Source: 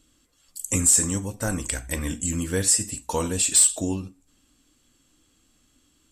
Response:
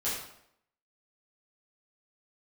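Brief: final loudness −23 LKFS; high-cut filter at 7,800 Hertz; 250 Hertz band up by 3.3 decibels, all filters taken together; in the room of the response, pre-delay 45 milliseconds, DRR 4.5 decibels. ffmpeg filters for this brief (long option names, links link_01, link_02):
-filter_complex "[0:a]lowpass=7800,equalizer=frequency=250:width_type=o:gain=4,asplit=2[link_01][link_02];[1:a]atrim=start_sample=2205,adelay=45[link_03];[link_02][link_03]afir=irnorm=-1:irlink=0,volume=-10.5dB[link_04];[link_01][link_04]amix=inputs=2:normalize=0,volume=-0.5dB"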